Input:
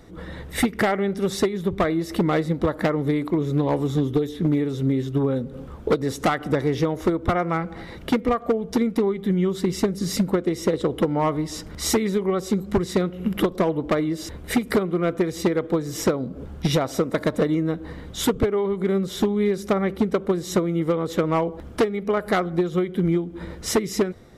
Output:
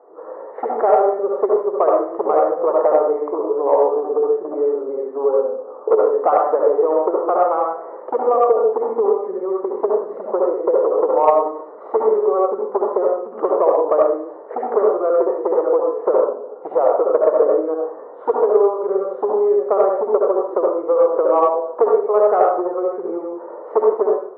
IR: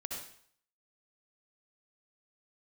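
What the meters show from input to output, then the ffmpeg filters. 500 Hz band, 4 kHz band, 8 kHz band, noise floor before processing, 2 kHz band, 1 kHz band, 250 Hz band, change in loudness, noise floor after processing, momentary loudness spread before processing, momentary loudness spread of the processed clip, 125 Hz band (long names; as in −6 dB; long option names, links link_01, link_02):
+9.0 dB, below −30 dB, below −40 dB, −39 dBFS, can't be measured, +9.5 dB, −6.5 dB, +5.5 dB, −36 dBFS, 4 LU, 9 LU, below −30 dB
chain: -filter_complex "[0:a]asuperpass=centerf=690:order=8:qfactor=0.92[link_01];[1:a]atrim=start_sample=2205[link_02];[link_01][link_02]afir=irnorm=-1:irlink=0,acontrast=82,volume=3.5dB"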